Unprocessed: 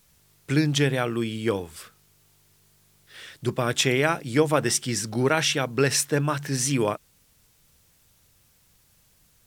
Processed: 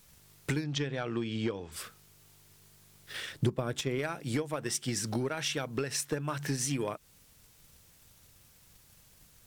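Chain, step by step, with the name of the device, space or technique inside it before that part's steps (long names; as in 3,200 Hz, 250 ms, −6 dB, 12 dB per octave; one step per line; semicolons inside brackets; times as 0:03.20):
drum-bus smash (transient designer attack +8 dB, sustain 0 dB; downward compressor 16 to 1, threshold −28 dBFS, peak gain reduction 19.5 dB; soft clipping −22.5 dBFS, distortion −17 dB)
0:00.64–0:01.72: low-pass filter 6,300 Hz 24 dB per octave
0:03.32–0:03.99: tilt shelving filter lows +4.5 dB
level +1 dB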